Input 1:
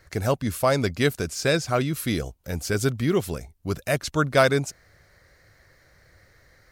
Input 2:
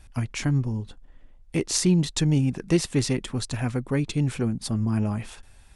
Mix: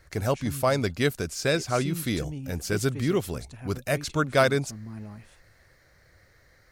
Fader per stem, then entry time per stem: -2.5, -15.0 dB; 0.00, 0.00 s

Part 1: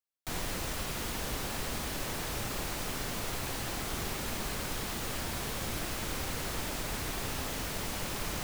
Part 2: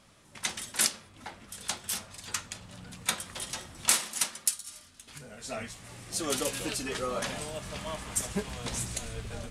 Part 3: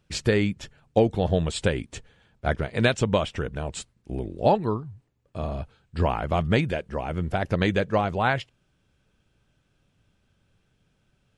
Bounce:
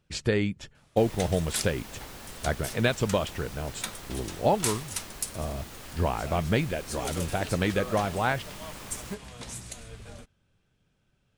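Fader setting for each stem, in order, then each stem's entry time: -8.0, -5.5, -3.5 dB; 0.70, 0.75, 0.00 s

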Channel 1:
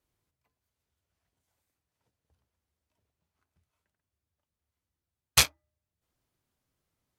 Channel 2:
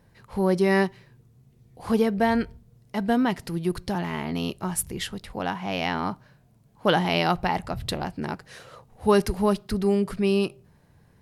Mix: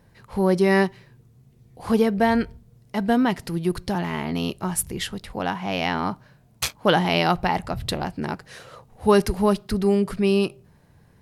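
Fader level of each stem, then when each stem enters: -5.5, +2.5 dB; 1.25, 0.00 s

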